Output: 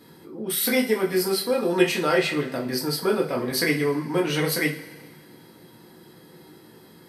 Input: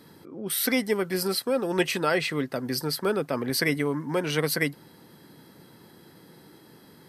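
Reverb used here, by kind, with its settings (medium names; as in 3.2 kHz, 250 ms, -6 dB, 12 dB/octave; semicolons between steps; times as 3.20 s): two-slope reverb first 0.28 s, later 1.7 s, from -19 dB, DRR -2.5 dB; trim -2 dB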